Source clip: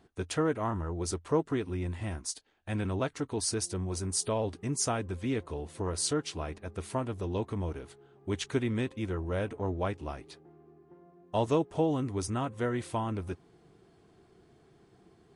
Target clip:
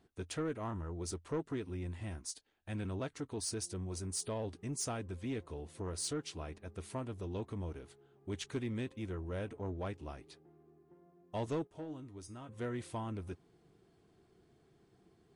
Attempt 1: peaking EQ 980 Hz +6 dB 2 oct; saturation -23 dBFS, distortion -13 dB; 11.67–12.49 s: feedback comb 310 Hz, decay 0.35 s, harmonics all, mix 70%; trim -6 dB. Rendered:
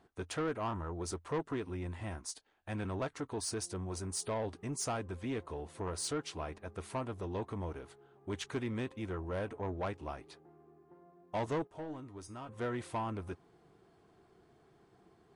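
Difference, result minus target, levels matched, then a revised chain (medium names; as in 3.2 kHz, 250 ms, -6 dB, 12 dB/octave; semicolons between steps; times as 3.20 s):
1 kHz band +4.5 dB
peaking EQ 980 Hz -2.5 dB 2 oct; saturation -23 dBFS, distortion -19 dB; 11.67–12.49 s: feedback comb 310 Hz, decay 0.35 s, harmonics all, mix 70%; trim -6 dB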